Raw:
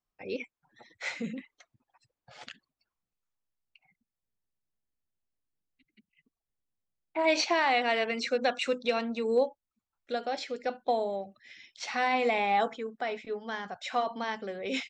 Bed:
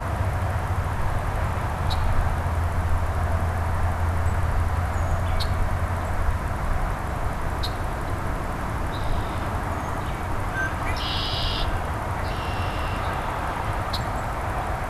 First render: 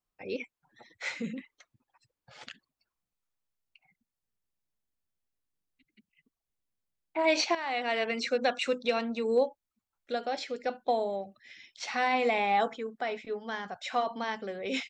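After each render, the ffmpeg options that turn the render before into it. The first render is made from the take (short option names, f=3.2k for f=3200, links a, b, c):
-filter_complex "[0:a]asettb=1/sr,asplit=3[a][b][c];[a]atrim=end=1.034[d];[b]atrim=start=1.03:end=2.45,asetpts=PTS-STARTPTS,afade=t=in:d=0.004:c=qsin,afade=t=out:st=1.416:d=0.004:c=qsin,equalizer=f=700:t=o:w=0.31:g=-6.5[e];[c]atrim=start=2.446[f];[d][e]acrossfade=d=0.004:c1=hsin:c2=qsin[g];[g][f]acrossfade=d=0.004:c1=qsin:c2=hsin,asplit=2[h][i];[h]atrim=end=7.55,asetpts=PTS-STARTPTS,afade=t=out:st=7.546:d=0.004:c=hsin:silence=0.223872[j];[i]atrim=start=7.55,asetpts=PTS-STARTPTS,afade=t=in:d=0.54:silence=0.223872[k];[j][k]concat=n=2:v=0:a=1"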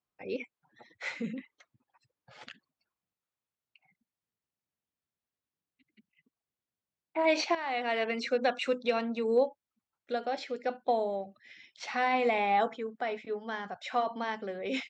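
-af "highpass=89,highshelf=f=4.7k:g=-9.5"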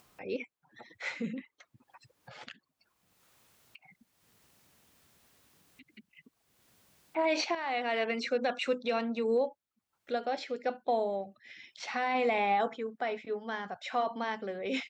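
-af "alimiter=limit=-20.5dB:level=0:latency=1:release=16,acompressor=mode=upward:threshold=-44dB:ratio=2.5"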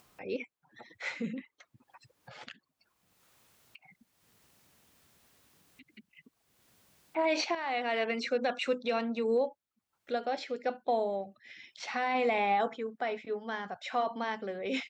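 -af anull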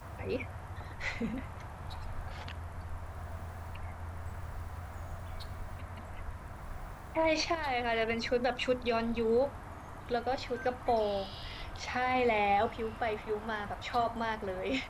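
-filter_complex "[1:a]volume=-18.5dB[a];[0:a][a]amix=inputs=2:normalize=0"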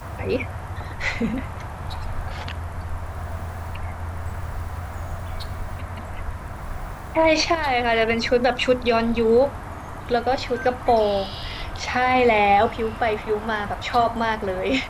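-af "volume=11.5dB"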